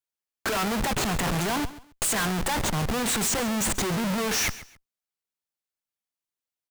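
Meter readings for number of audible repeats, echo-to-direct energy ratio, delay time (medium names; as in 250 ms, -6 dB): 2, -16.5 dB, 136 ms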